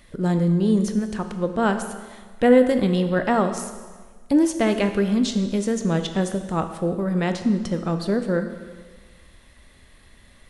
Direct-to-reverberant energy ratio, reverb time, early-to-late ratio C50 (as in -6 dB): 7.5 dB, 1.5 s, 9.0 dB